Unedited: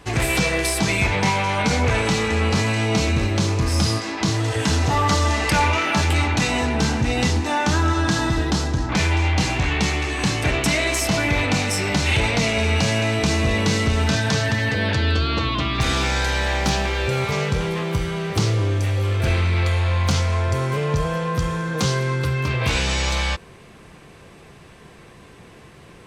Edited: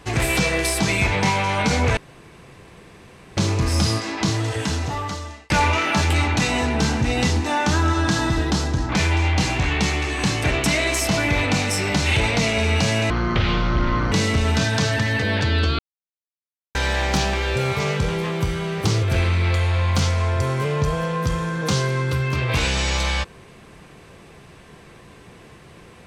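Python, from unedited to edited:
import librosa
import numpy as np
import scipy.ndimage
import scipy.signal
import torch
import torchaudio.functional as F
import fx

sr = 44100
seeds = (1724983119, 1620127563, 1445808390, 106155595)

y = fx.edit(x, sr, fx.room_tone_fill(start_s=1.97, length_s=1.4),
    fx.fade_out_span(start_s=4.25, length_s=1.25),
    fx.speed_span(start_s=13.1, length_s=0.54, speed=0.53),
    fx.silence(start_s=15.31, length_s=0.96),
    fx.cut(start_s=18.55, length_s=0.6), tone=tone)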